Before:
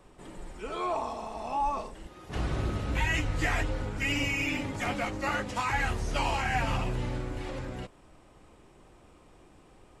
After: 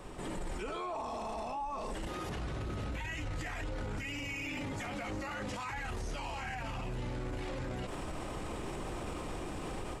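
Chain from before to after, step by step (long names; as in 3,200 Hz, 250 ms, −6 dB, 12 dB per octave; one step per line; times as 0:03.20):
automatic gain control gain up to 12.5 dB
brickwall limiter −40 dBFS, peak gain reduction 35.5 dB
level +8.5 dB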